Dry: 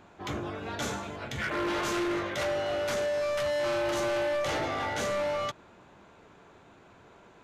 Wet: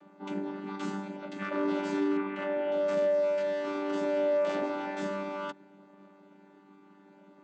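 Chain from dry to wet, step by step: chord vocoder bare fifth, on G3; 2.17–2.72 resonant high shelf 3500 Hz -11.5 dB, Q 1.5; gain +1.5 dB

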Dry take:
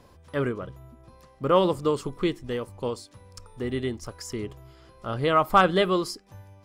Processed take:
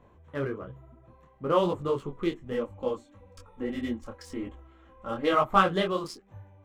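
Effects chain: Wiener smoothing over 9 samples; 2.51–5.33 comb 3.7 ms, depth 86%; detuned doubles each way 38 cents

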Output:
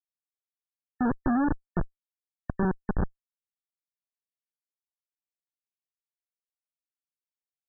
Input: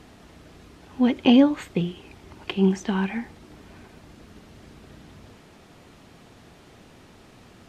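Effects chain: Wiener smoothing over 25 samples; treble ducked by the level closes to 830 Hz, closed at -20 dBFS; dynamic EQ 330 Hz, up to +4 dB, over -31 dBFS, Q 1.3; Schmitt trigger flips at -17.5 dBFS; brick-wall FIR low-pass 1800 Hz; gain +1.5 dB

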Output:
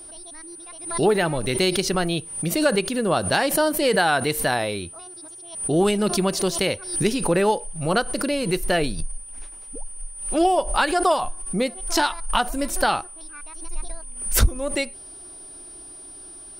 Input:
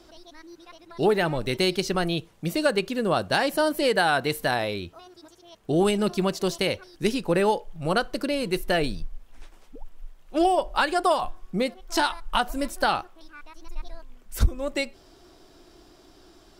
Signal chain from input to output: whine 9300 Hz -41 dBFS; backwards sustainer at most 89 dB/s; gain +2 dB

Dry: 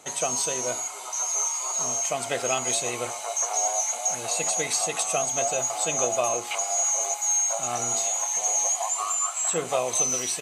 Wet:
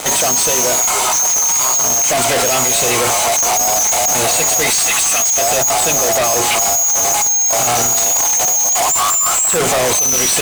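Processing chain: 4.7–5.38 HPF 1300 Hz 12 dB/oct; fuzz box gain 48 dB, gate -51 dBFS

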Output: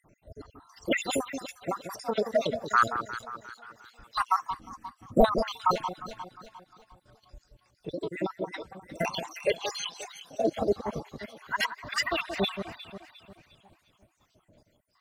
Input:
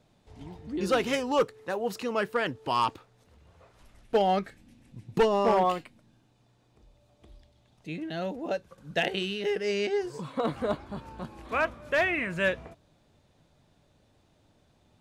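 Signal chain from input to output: random spectral dropouts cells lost 74%; echo with dull and thin repeats by turns 0.177 s, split 1100 Hz, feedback 63%, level -8 dB; formant shift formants +5 st; gain +5.5 dB

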